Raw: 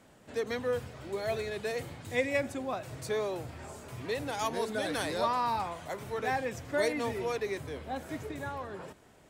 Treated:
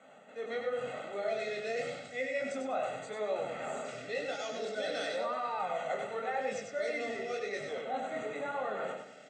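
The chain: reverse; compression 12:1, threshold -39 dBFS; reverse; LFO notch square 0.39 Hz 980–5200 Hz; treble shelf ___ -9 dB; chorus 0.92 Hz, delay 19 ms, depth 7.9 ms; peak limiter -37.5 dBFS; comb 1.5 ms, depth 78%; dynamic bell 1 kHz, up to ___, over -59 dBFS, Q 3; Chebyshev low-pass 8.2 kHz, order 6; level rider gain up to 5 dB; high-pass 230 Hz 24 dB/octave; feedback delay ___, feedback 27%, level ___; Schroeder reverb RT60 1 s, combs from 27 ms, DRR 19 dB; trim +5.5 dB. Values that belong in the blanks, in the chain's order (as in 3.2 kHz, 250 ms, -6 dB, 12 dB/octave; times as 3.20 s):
6.3 kHz, -3 dB, 98 ms, -5 dB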